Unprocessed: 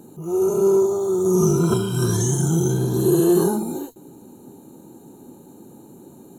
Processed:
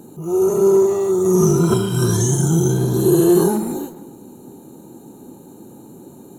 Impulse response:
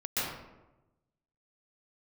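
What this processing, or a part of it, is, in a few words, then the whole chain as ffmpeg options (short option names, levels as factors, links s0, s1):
saturated reverb return: -filter_complex "[0:a]asplit=2[s0][s1];[1:a]atrim=start_sample=2205[s2];[s1][s2]afir=irnorm=-1:irlink=0,asoftclip=type=tanh:threshold=0.15,volume=0.106[s3];[s0][s3]amix=inputs=2:normalize=0,volume=1.41"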